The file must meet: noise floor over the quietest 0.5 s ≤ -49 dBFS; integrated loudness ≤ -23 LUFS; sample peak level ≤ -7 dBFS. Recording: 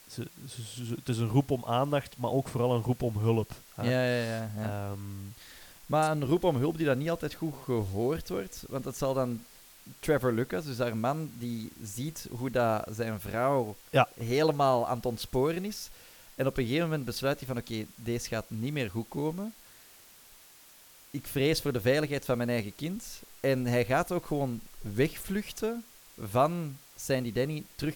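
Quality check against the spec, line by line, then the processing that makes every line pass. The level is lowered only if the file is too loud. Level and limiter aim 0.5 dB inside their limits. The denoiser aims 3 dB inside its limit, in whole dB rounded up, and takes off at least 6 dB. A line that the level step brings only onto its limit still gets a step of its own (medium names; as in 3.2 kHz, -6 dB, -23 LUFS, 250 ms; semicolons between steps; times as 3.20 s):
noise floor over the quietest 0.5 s -55 dBFS: pass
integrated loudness -31.0 LUFS: pass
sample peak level -10.0 dBFS: pass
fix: none needed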